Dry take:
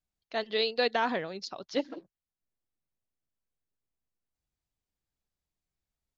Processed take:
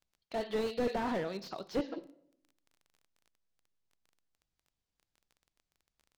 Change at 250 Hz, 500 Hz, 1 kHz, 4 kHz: +0.5, -3.5, -6.0, -12.5 dB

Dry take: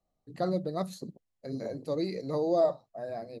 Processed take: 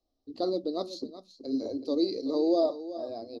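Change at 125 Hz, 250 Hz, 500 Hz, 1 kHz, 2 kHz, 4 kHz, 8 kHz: under -10 dB, +5.0 dB, +0.5 dB, -2.5 dB, under -10 dB, +7.0 dB, n/a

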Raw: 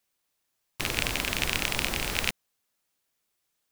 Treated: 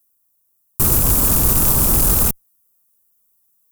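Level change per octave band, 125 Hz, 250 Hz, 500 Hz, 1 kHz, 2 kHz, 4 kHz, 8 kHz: +18.0, +14.5, +10.0, +9.0, -5.0, -1.5, +17.5 dB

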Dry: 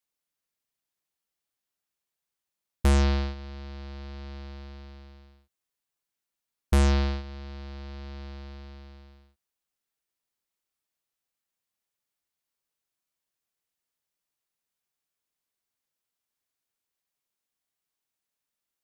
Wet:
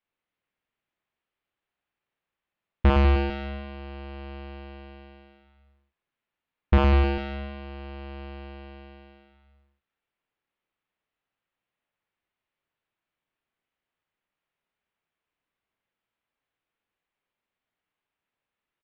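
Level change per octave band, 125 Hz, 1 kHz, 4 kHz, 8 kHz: +2.0 dB, +6.0 dB, -1.0 dB, under -20 dB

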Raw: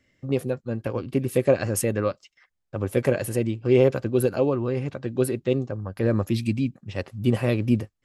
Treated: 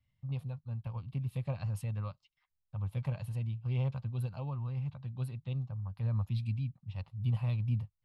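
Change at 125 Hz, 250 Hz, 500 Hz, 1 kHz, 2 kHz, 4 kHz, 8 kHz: -5.0 dB, -18.5 dB, -27.5 dB, -14.5 dB, -19.5 dB, under -15 dB, under -25 dB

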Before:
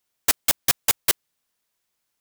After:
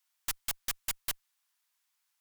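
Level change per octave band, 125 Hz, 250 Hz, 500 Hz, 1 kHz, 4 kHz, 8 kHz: -14.0, -18.5, -20.5, -14.5, -13.5, -14.0 dB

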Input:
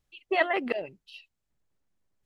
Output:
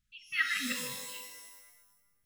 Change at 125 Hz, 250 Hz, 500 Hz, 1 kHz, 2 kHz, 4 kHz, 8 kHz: +0.5 dB, -7.0 dB, -22.0 dB, -13.5 dB, -1.0 dB, +4.0 dB, n/a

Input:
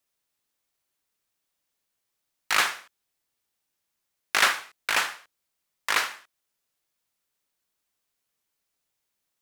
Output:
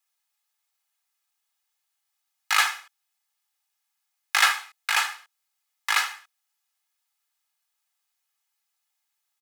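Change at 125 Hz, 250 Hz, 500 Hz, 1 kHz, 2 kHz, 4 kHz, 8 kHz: n/a, under -20 dB, -9.5 dB, +1.5 dB, +1.5 dB, +1.5 dB, +1.5 dB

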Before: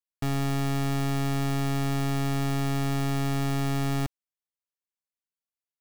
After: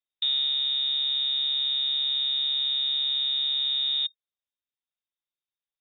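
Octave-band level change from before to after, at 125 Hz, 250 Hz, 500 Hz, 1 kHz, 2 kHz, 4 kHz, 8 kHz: under -40 dB, under -35 dB, under -25 dB, under -20 dB, -10.0 dB, +20.0 dB, under -40 dB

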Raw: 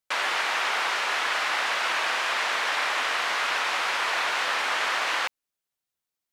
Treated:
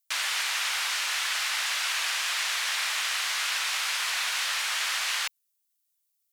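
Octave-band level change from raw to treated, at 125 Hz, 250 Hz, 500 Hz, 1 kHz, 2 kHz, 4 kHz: n/a, under -20 dB, -15.0 dB, -9.0 dB, -3.5 dB, +1.5 dB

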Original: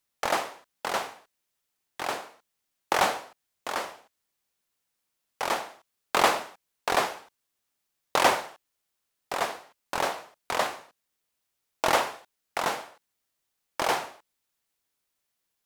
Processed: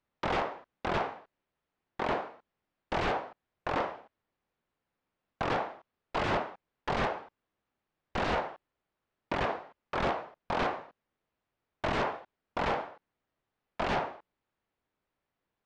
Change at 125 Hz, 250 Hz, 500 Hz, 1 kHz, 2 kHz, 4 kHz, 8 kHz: +8.0, +2.5, -2.5, -5.0, -5.0, -9.0, -20.0 dB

